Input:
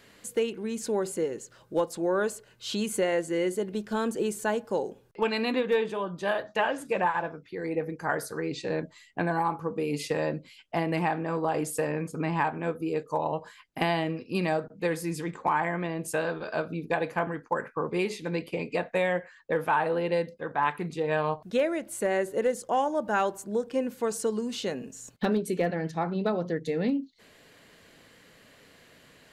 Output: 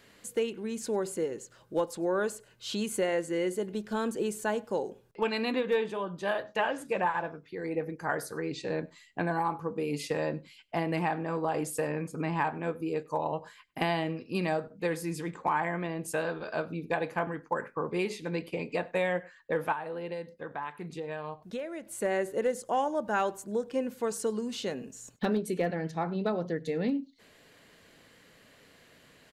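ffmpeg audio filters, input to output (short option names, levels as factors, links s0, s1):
-filter_complex "[0:a]asettb=1/sr,asplit=3[s0][s1][s2];[s0]atrim=end=19.724[s3];[s1]atrim=start=19.72:end=21.98,asetpts=PTS-STARTPTS,afade=t=in:d=0.004:c=qsin,afade=t=out:st=2.256:d=0.004:c=qsin,acompressor=threshold=0.02:ratio=3[s4];[s2]atrim=start=21.976[s5];[s3][s4]acrossfade=d=0.004:c1=hsin:c2=qsin[s6];[s6][s5]acrossfade=d=0.004:c1=qsin:c2=hsin,asplit=2[s7][s8];[s8]adelay=99.13,volume=0.0562,highshelf=f=4000:g=-2.23[s9];[s7][s9]amix=inputs=2:normalize=0,volume=0.75"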